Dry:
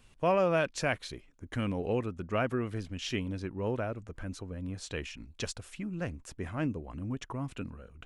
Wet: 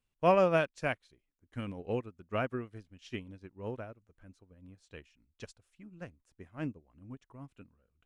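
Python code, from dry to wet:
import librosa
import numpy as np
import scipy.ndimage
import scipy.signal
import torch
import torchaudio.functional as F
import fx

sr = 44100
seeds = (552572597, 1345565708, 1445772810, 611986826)

y = fx.upward_expand(x, sr, threshold_db=-42.0, expansion=2.5)
y = y * 10.0 ** (3.5 / 20.0)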